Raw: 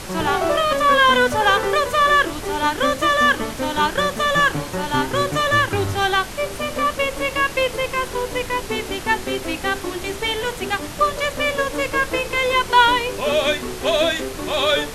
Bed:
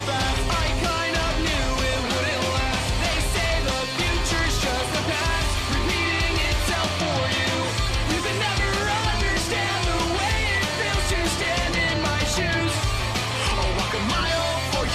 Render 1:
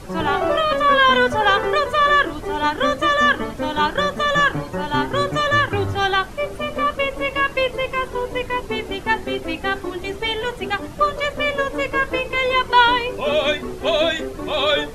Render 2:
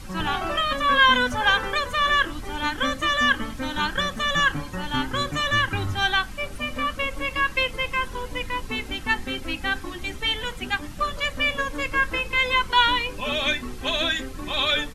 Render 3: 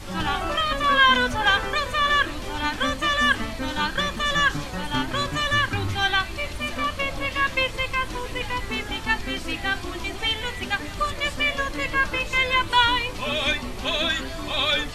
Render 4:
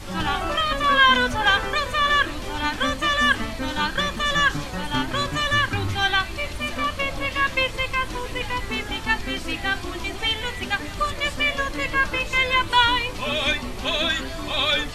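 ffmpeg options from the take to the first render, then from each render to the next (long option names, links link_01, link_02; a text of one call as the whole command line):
ffmpeg -i in.wav -af "afftdn=noise_reduction=12:noise_floor=-32" out.wav
ffmpeg -i in.wav -af "equalizer=frequency=510:width_type=o:width=1.8:gain=-12.5,aecho=1:1:3.8:0.31" out.wav
ffmpeg -i in.wav -i bed.wav -filter_complex "[1:a]volume=-13.5dB[link_01];[0:a][link_01]amix=inputs=2:normalize=0" out.wav
ffmpeg -i in.wav -af "volume=1dB" out.wav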